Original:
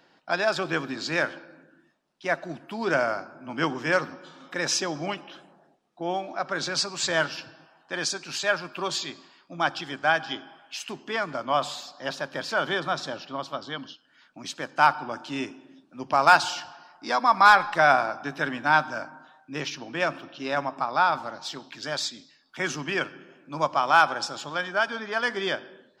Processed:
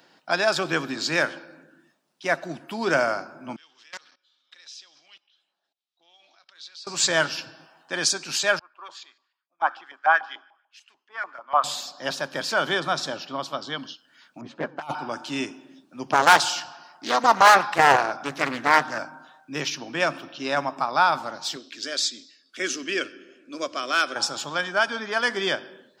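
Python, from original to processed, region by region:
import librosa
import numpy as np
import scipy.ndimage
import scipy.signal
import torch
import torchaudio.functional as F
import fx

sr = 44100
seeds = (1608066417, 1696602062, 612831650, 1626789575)

y = fx.chain(x, sr, fx.level_steps(step_db=21),
    fx.bandpass_q(hz=3800.0, q=2.7),
    fx.doppler_dist(depth_ms=0.19), at=(3.56, 6.87))
y = fx.chain(y, sr, fx.highpass(hz=220.0, slope=24),
    fx.filter_lfo_bandpass(shape='saw_up', hz=6.8, low_hz=810.0, high_hz=1900.0, q=2.9),
    fx.band_widen(depth_pct=100), at=(8.59, 11.64))
y = fx.chain(y, sr, fx.env_lowpass(base_hz=650.0, full_db=-17.0),
    fx.env_flanger(rest_ms=11.1, full_db=-17.5),
    fx.over_compress(threshold_db=-30.0, ratio=-0.5), at=(14.41, 14.95))
y = fx.chain(y, sr, fx.overload_stage(gain_db=9.5),
    fx.doppler_dist(depth_ms=0.48), at=(16.12, 18.99))
y = fx.chain(y, sr, fx.lowpass(hz=9400.0, slope=12),
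    fx.fixed_phaser(hz=360.0, stages=4), at=(21.56, 24.16))
y = scipy.signal.sosfilt(scipy.signal.butter(2, 100.0, 'highpass', fs=sr, output='sos'), y)
y = fx.high_shelf(y, sr, hz=5700.0, db=9.5)
y = y * librosa.db_to_amplitude(2.0)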